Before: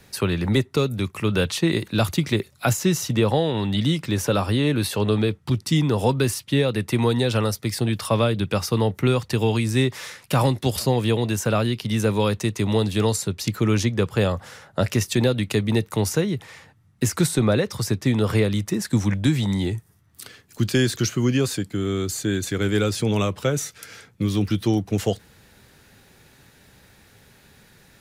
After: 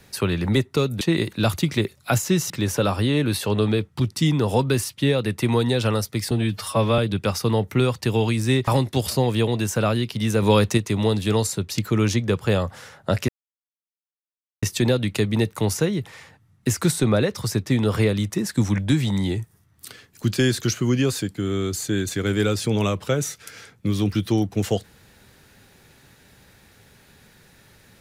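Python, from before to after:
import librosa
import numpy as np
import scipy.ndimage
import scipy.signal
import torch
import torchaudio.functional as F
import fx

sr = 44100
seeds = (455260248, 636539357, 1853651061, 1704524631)

y = fx.edit(x, sr, fx.cut(start_s=1.01, length_s=0.55),
    fx.cut(start_s=3.05, length_s=0.95),
    fx.stretch_span(start_s=7.81, length_s=0.45, factor=1.5),
    fx.cut(start_s=9.95, length_s=0.42),
    fx.clip_gain(start_s=12.12, length_s=0.35, db=4.5),
    fx.insert_silence(at_s=14.98, length_s=1.34), tone=tone)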